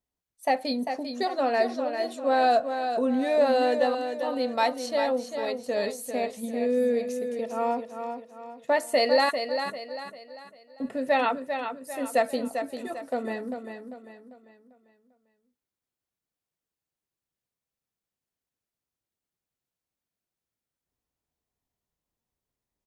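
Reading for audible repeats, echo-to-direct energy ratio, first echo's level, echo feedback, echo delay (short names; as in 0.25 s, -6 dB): 4, -6.5 dB, -7.5 dB, 40%, 0.396 s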